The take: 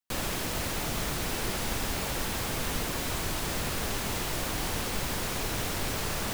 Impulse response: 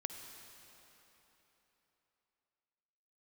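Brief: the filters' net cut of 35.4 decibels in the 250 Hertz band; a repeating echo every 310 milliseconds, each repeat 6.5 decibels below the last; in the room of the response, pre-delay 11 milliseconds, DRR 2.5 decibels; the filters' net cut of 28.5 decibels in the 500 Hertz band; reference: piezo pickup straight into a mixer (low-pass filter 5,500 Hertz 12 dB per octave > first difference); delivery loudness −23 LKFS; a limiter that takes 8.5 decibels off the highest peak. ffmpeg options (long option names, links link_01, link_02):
-filter_complex "[0:a]equalizer=frequency=250:width_type=o:gain=-7,equalizer=frequency=500:width_type=o:gain=-6,alimiter=level_in=2.5dB:limit=-24dB:level=0:latency=1,volume=-2.5dB,aecho=1:1:310|620|930|1240|1550|1860:0.473|0.222|0.105|0.0491|0.0231|0.0109,asplit=2[link_01][link_02];[1:a]atrim=start_sample=2205,adelay=11[link_03];[link_02][link_03]afir=irnorm=-1:irlink=0,volume=-1.5dB[link_04];[link_01][link_04]amix=inputs=2:normalize=0,lowpass=5500,aderivative,volume=19dB"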